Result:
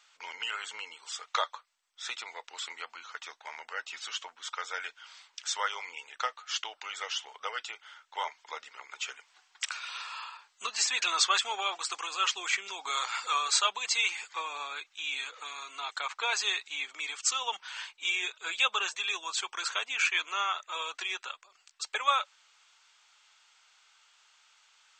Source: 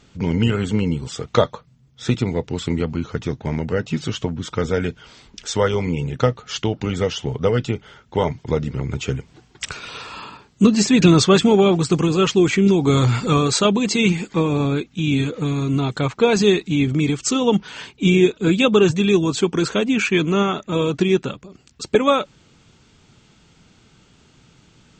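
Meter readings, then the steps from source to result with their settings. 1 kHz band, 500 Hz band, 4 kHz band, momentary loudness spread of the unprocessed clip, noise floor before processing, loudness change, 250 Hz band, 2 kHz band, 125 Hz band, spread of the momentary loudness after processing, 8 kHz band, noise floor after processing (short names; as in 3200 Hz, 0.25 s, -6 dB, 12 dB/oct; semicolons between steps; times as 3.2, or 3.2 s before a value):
-6.5 dB, -28.0 dB, -5.0 dB, 12 LU, -55 dBFS, -13.0 dB, under -40 dB, -5.0 dB, under -40 dB, 15 LU, -5.0 dB, -69 dBFS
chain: HPF 920 Hz 24 dB/oct; gain -5 dB; MP2 128 kbps 32000 Hz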